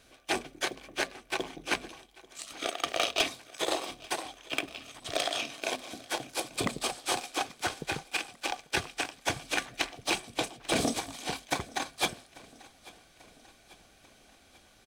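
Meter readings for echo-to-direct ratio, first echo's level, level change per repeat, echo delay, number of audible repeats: -20.5 dB, -22.0 dB, -5.0 dB, 0.84 s, 3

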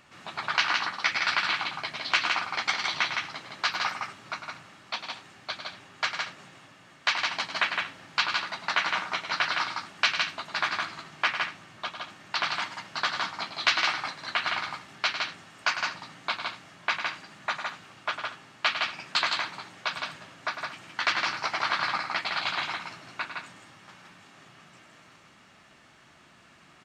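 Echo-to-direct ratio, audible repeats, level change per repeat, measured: -2.5 dB, 3, no steady repeat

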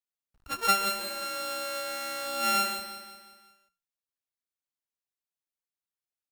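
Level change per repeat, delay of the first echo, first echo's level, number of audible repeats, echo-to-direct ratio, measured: -6.0 dB, 0.179 s, -10.0 dB, 5, -9.0 dB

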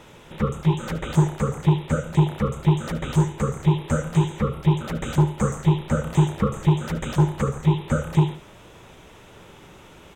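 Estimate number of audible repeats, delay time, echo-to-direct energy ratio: 2, 73 ms, -12.5 dB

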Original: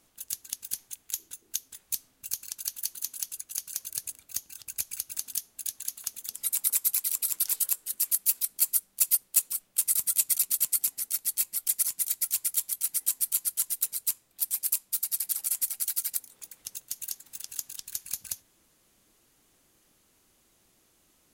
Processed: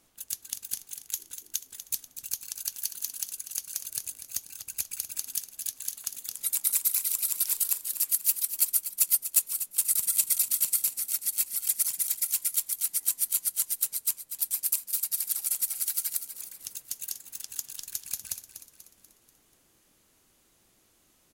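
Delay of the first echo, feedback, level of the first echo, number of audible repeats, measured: 0.243 s, 49%, -11.0 dB, 4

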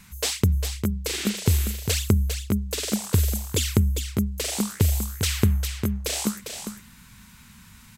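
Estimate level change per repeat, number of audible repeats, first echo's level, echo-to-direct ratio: no steady repeat, 1, -7.5 dB, -7.5 dB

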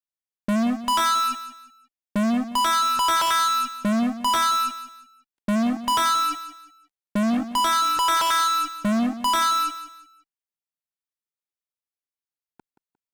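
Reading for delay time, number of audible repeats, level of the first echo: 0.177 s, 3, -13.0 dB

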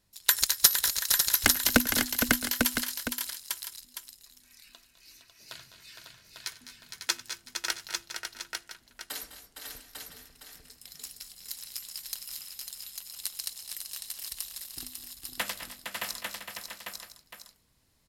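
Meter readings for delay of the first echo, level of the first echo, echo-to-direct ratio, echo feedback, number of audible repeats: 95 ms, -19.5 dB, -0.5 dB, no steady repeat, 8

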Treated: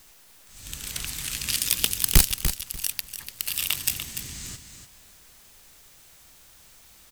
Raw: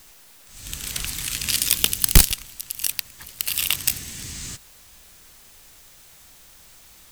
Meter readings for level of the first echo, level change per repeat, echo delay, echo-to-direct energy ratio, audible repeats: -9.0 dB, -14.5 dB, 0.293 s, -9.0 dB, 2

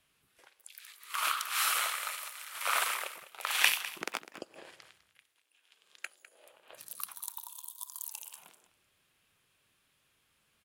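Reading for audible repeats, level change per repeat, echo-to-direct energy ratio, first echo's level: 1, no steady repeat, -15.0 dB, -15.0 dB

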